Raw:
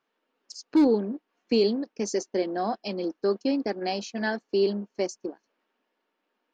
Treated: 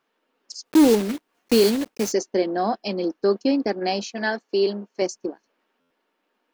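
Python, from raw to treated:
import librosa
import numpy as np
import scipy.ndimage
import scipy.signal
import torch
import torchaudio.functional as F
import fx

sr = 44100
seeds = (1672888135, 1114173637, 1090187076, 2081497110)

y = fx.block_float(x, sr, bits=3, at=(0.64, 2.11), fade=0.02)
y = fx.highpass(y, sr, hz=340.0, slope=6, at=(4.07, 5.02))
y = fx.buffer_glitch(y, sr, at_s=(5.8,), block=512, repeats=8)
y = y * 10.0 ** (5.0 / 20.0)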